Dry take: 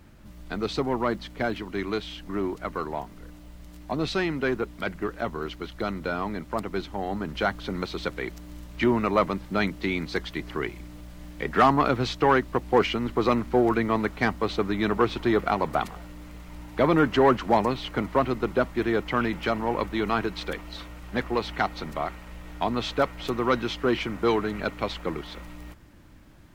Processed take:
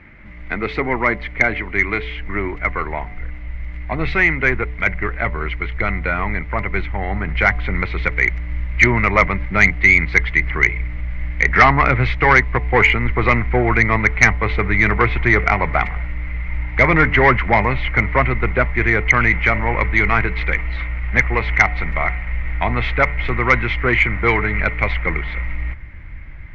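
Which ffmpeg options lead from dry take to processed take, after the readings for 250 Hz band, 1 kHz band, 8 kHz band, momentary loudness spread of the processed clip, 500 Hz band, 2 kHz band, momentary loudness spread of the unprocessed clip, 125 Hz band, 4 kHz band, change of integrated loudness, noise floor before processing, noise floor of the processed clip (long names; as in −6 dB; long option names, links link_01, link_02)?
+2.5 dB, +7.0 dB, can't be measured, 13 LU, +3.0 dB, +17.5 dB, 14 LU, +13.5 dB, +2.5 dB, +9.5 dB, −46 dBFS, −31 dBFS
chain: -af "bandreject=frequency=145.3:width_type=h:width=4,bandreject=frequency=290.6:width_type=h:width=4,bandreject=frequency=435.9:width_type=h:width=4,bandreject=frequency=581.2:width_type=h:width=4,bandreject=frequency=726.5:width_type=h:width=4,bandreject=frequency=871.8:width_type=h:width=4,bandreject=frequency=1017.1:width_type=h:width=4,asubboost=boost=7.5:cutoff=92,lowpass=frequency=2100:width_type=q:width=12,aeval=exprs='1.26*sin(PI/2*1.78*val(0)/1.26)':channel_layout=same,volume=-3.5dB"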